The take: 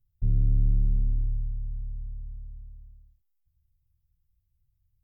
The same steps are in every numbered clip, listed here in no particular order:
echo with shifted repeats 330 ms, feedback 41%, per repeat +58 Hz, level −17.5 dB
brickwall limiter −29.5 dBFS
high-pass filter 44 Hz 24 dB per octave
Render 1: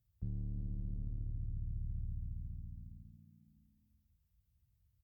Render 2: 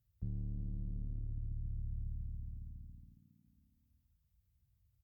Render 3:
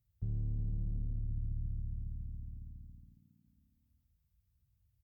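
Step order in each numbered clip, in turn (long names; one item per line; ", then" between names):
brickwall limiter, then echo with shifted repeats, then high-pass filter
brickwall limiter, then high-pass filter, then echo with shifted repeats
high-pass filter, then brickwall limiter, then echo with shifted repeats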